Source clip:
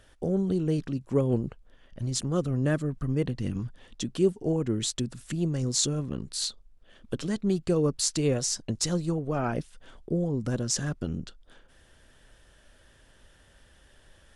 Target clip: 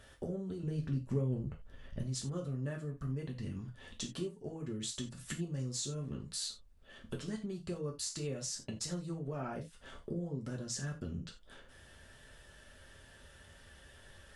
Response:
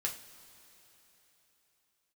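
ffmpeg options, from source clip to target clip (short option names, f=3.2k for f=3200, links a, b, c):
-filter_complex "[0:a]acompressor=threshold=-39dB:ratio=5,asettb=1/sr,asplit=3[a][b][c];[a]atrim=end=0.634[d];[b]atrim=start=0.63:end=2.01,asetpts=PTS-STARTPTS,afade=t=in:d=0.004:c=qsin,afade=t=out:st=1.376:d=0.004:c=qsin,lowshelf=f=160:g=11[e];[c]atrim=start=2.006[f];[d][e]acrossfade=d=0.004:c1=hsin:c2=qsin[g];[g][f]acrossfade=d=0.004:c1=qsin:c2=hsin[h];[1:a]atrim=start_sample=2205,atrim=end_sample=4410[i];[h][i]afir=irnorm=-1:irlink=0"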